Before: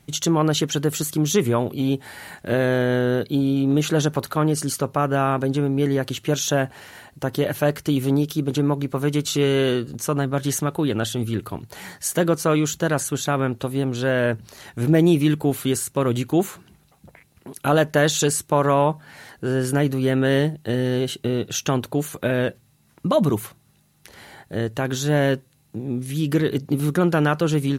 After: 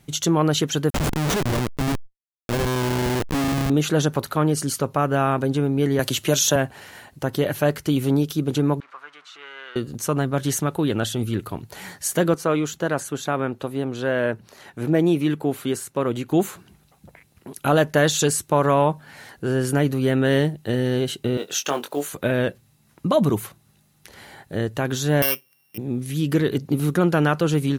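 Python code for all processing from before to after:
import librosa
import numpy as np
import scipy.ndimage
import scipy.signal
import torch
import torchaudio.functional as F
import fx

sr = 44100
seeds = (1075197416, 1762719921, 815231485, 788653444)

y = fx.chain(x, sr, fx.schmitt(flips_db=-21.5),
    fx.sustainer(db_per_s=120.0), at=(0.9, 3.7))
y = fx.chain(y, sr, fx.high_shelf(hz=3600.0, db=7.5),
    fx.small_body(hz=(610.0, 990.0), ring_ms=45, db=6),
    fx.band_squash(depth_pct=40), at=(5.99, 6.56))
y = fx.chain(y, sr, fx.zero_step(step_db=-29.0),
    fx.ladder_bandpass(hz=1500.0, resonance_pct=45), at=(8.8, 9.76))
y = fx.chain(y, sr, fx.highpass(hz=240.0, slope=6),
    fx.high_shelf(hz=2900.0, db=-7.5), at=(12.34, 16.31))
y = fx.chain(y, sr, fx.block_float(bits=7),
    fx.highpass(hz=420.0, slope=12),
    fx.doubler(ms=21.0, db=-5.5), at=(21.37, 22.13))
y = fx.chain(y, sr, fx.sample_sort(block=16),
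    fx.highpass(hz=1100.0, slope=6),
    fx.resample_bad(factor=3, down='filtered', up='zero_stuff'), at=(25.22, 25.78))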